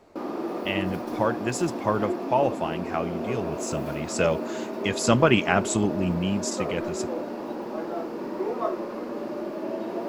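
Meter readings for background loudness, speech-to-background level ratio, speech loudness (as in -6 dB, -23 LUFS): -32.0 LUFS, 5.5 dB, -26.5 LUFS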